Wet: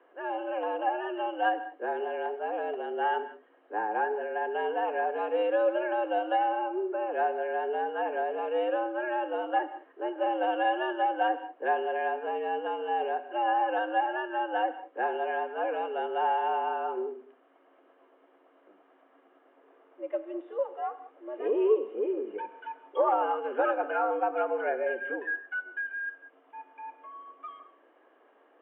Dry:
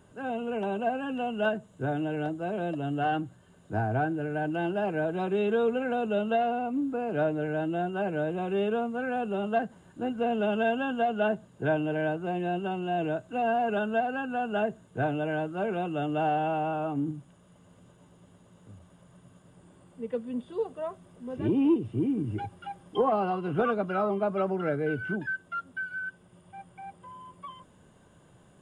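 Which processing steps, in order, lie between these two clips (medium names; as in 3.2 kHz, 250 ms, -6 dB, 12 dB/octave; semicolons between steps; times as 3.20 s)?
gated-style reverb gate 220 ms flat, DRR 11.5 dB; mistuned SSB +100 Hz 260–2600 Hz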